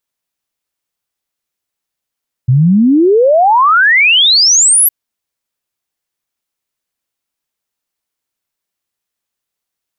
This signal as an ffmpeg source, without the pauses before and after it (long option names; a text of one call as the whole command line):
ffmpeg -f lavfi -i "aevalsrc='0.562*clip(min(t,2.41-t)/0.01,0,1)*sin(2*PI*120*2.41/log(12000/120)*(exp(log(12000/120)*t/2.41)-1))':duration=2.41:sample_rate=44100" out.wav